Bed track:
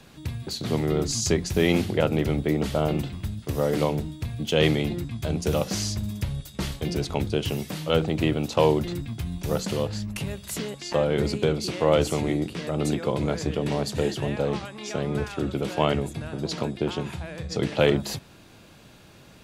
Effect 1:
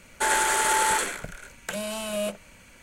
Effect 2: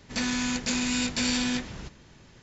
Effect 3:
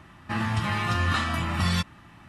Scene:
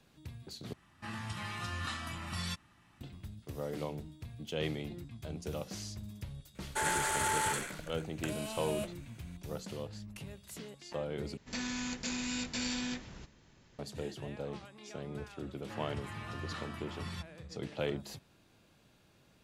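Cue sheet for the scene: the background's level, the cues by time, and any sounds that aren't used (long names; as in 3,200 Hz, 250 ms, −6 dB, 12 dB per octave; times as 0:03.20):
bed track −15 dB
0:00.73: overwrite with 3 −15 dB + parametric band 8,200 Hz +8.5 dB 2.4 octaves
0:06.55: mix in 1 −9.5 dB
0:11.37: overwrite with 2 −9.5 dB
0:15.40: mix in 3 −18 dB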